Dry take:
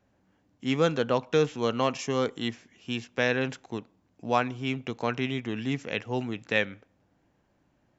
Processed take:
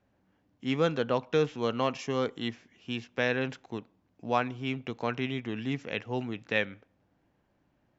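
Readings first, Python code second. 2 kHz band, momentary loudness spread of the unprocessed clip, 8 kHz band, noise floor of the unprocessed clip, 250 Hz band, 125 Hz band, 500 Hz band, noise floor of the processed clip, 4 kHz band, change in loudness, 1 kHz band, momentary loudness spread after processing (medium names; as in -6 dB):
-2.5 dB, 10 LU, no reading, -70 dBFS, -2.5 dB, -2.5 dB, -2.5 dB, -72 dBFS, -3.0 dB, -2.5 dB, -2.5 dB, 10 LU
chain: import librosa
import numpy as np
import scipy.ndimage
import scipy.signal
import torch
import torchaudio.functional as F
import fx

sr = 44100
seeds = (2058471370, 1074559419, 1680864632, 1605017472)

y = scipy.signal.sosfilt(scipy.signal.butter(2, 5300.0, 'lowpass', fs=sr, output='sos'), x)
y = y * librosa.db_to_amplitude(-2.5)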